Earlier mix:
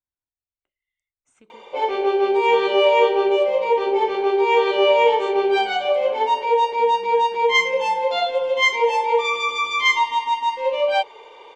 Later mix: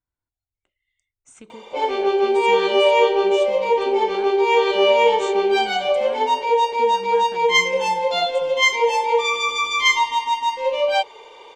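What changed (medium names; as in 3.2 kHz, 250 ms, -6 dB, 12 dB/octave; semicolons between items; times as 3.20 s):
speech +8.5 dB; master: add tone controls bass +4 dB, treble +8 dB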